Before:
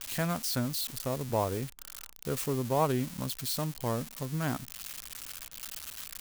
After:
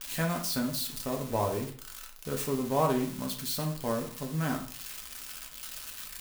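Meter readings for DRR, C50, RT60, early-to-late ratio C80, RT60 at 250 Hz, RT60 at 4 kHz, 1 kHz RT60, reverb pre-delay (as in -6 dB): 1.0 dB, 8.5 dB, 0.50 s, 13.0 dB, 0.45 s, 0.40 s, 0.50 s, 3 ms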